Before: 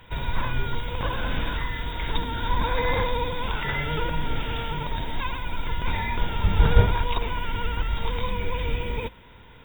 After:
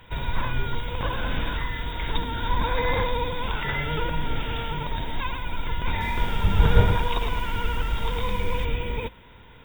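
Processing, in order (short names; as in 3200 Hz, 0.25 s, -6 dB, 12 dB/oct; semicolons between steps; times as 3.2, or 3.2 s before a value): 5.9–8.65 lo-fi delay 0.106 s, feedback 35%, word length 7-bit, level -6.5 dB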